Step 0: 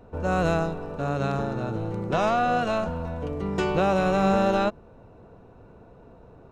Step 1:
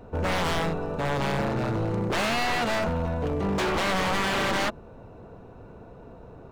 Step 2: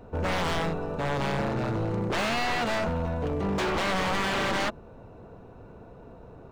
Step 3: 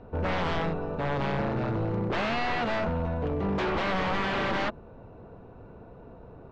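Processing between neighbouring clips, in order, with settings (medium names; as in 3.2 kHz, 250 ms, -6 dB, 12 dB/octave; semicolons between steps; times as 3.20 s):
wavefolder -24.5 dBFS; trim +4 dB
median filter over 3 samples; trim -1.5 dB
distance through air 180 m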